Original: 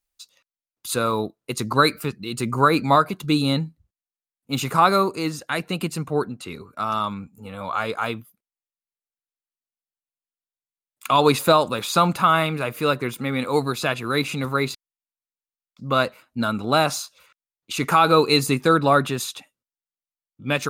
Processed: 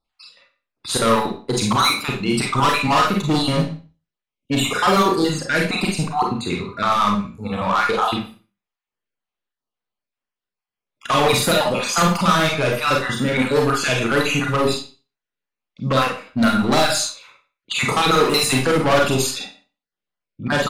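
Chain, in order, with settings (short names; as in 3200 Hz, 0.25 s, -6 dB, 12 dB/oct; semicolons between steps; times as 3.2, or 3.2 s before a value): random spectral dropouts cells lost 41%; in parallel at -1 dB: compressor, threshold -31 dBFS, peak gain reduction 17.5 dB; on the sum: hard clip -20 dBFS, distortion -6 dB; on a send: echo 0.116 s -20.5 dB; on the sum: Schroeder reverb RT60 0.34 s, combs from 31 ms, DRR -0.5 dB; low-pass opened by the level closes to 3000 Hz, open at -17 dBFS; gain +4.5 dB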